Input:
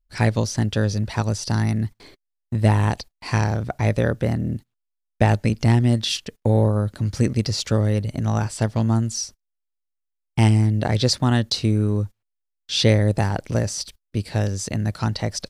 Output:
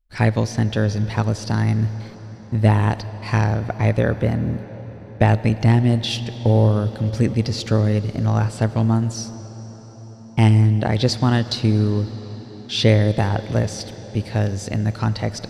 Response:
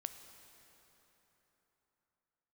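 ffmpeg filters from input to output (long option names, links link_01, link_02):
-filter_complex "[0:a]asplit=2[link_01][link_02];[1:a]atrim=start_sample=2205,asetrate=26019,aresample=44100,lowpass=4900[link_03];[link_02][link_03]afir=irnorm=-1:irlink=0,volume=0dB[link_04];[link_01][link_04]amix=inputs=2:normalize=0,volume=-4dB"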